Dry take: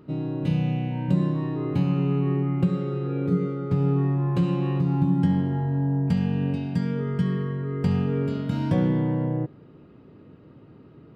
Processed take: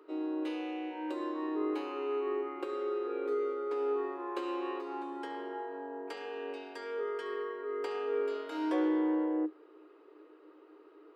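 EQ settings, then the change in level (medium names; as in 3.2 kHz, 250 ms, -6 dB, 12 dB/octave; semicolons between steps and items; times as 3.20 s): rippled Chebyshev high-pass 300 Hz, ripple 6 dB; 0.0 dB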